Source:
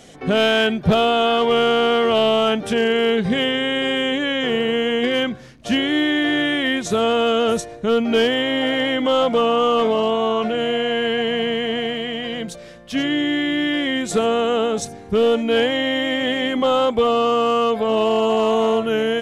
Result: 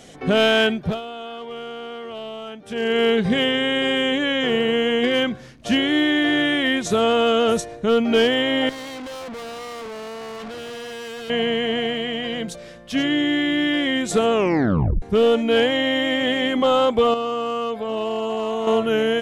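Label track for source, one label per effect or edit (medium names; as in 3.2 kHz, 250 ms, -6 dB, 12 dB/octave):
0.650000	3.010000	dip -16.5 dB, fades 0.36 s linear
8.690000	11.300000	valve stage drive 32 dB, bias 0.6
14.320000	14.320000	tape stop 0.70 s
17.140000	18.670000	gain -7 dB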